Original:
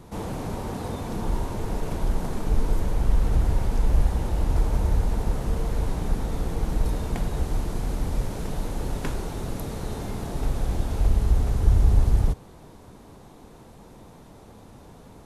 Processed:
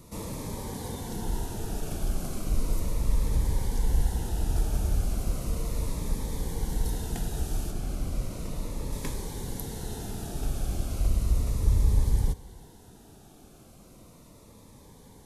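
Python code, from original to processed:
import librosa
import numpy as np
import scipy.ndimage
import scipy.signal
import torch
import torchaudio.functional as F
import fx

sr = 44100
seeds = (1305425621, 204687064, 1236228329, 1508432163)

y = fx.high_shelf(x, sr, hz=4400.0, db=fx.steps((0.0, 11.5), (7.7, 4.0), (8.91, 9.5)))
y = y + 10.0 ** (-24.0 / 20.0) * np.pad(y, (int(318 * sr / 1000.0), 0))[:len(y)]
y = fx.notch_cascade(y, sr, direction='falling', hz=0.35)
y = y * librosa.db_to_amplitude(-4.5)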